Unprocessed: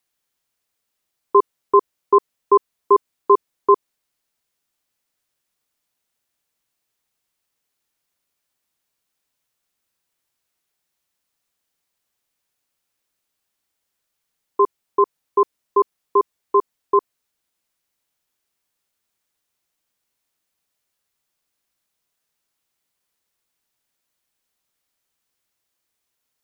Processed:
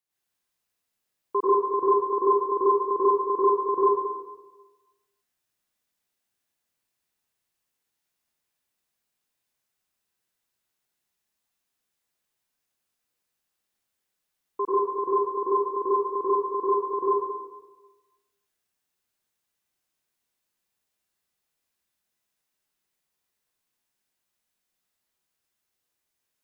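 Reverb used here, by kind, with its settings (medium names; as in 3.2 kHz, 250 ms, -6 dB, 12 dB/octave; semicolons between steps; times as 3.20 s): plate-style reverb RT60 1.2 s, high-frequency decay 0.9×, pre-delay 80 ms, DRR -9 dB; trim -12.5 dB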